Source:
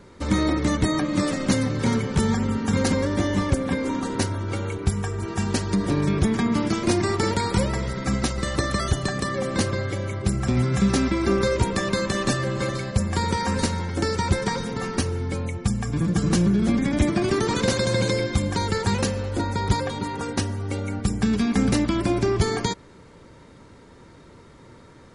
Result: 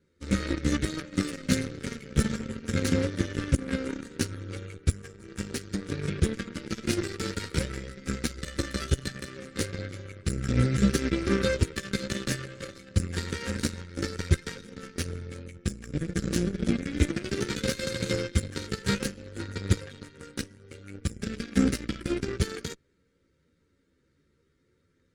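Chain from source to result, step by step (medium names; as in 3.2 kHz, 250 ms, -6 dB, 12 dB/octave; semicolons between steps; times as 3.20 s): chorus voices 2, 0.66 Hz, delay 13 ms, depth 2 ms; Chebyshev shaper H 7 -18 dB, 8 -31 dB, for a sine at -9 dBFS; high-order bell 840 Hz -14.5 dB 1 oct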